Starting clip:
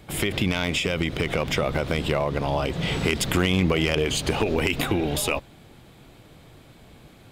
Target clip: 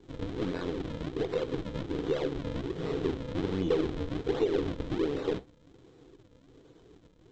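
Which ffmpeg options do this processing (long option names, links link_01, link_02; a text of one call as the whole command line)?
ffmpeg -i in.wav -filter_complex "[0:a]aresample=16000,acrusher=samples=24:mix=1:aa=0.000001:lfo=1:lforange=38.4:lforate=1.3,aresample=44100,flanger=delay=5.3:depth=4.8:regen=-79:speed=1.8:shape=sinusoidal,asoftclip=type=tanh:threshold=-19dB,aeval=exprs='0.112*(cos(1*acos(clip(val(0)/0.112,-1,1)))-cos(1*PI/2))+0.0112*(cos(4*acos(clip(val(0)/0.112,-1,1)))-cos(4*PI/2))':channel_layout=same,superequalizer=6b=3.16:7b=3.98:13b=1.78,acrossover=split=4800[link_01][link_02];[link_02]acompressor=threshold=-60dB:ratio=4:attack=1:release=60[link_03];[link_01][link_03]amix=inputs=2:normalize=0,volume=-7dB" out.wav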